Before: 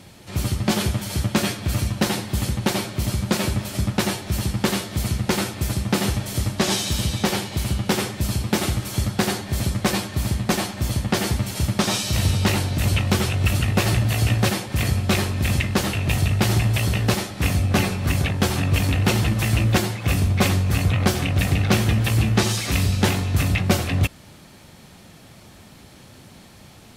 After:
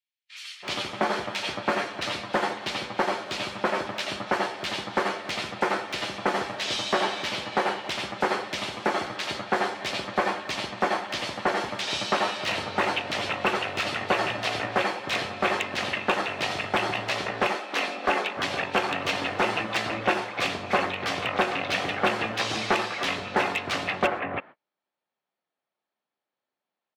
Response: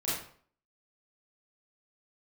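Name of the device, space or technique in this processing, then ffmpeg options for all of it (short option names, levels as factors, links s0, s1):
walkie-talkie: -filter_complex "[0:a]asettb=1/sr,asplit=3[s0][s1][s2];[s0]atrim=end=17.224[s3];[s1]atrim=start=17.22:end=18.04,asetpts=PTS-STARTPTS,afade=t=in:d=0.004:c=qsin,afade=t=out:st=0.816:d=0.004:c=qsin,highpass=f=230:w=0.5412,highpass=f=230:w=1.3066[s4];[s2]atrim=start=18.036[s5];[s3][s4]acrossfade=d=0.004:c1=hsin:c2=qsin[s6];[s6][s5]acrossfade=d=0.004:c1=qsin:c2=hsin,highpass=560,lowpass=2800,asoftclip=type=hard:threshold=0.133,agate=range=0.0112:threshold=0.00708:ratio=16:detection=peak,acrossover=split=2200[s7][s8];[s7]adelay=330[s9];[s9][s8]amix=inputs=2:normalize=0,volume=1.68"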